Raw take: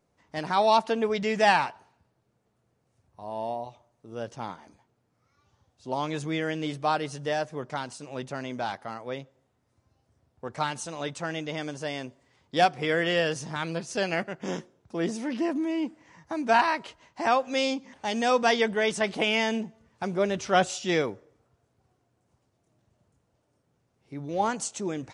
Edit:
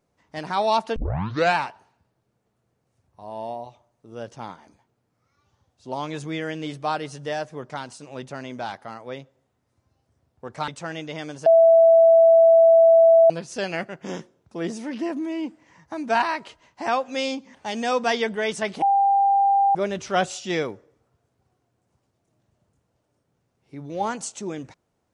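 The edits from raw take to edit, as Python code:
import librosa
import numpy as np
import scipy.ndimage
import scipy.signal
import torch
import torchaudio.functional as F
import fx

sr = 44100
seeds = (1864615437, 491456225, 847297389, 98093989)

y = fx.edit(x, sr, fx.tape_start(start_s=0.96, length_s=0.6),
    fx.cut(start_s=10.68, length_s=0.39),
    fx.bleep(start_s=11.85, length_s=1.84, hz=660.0, db=-10.0),
    fx.bleep(start_s=19.21, length_s=0.93, hz=794.0, db=-15.0), tone=tone)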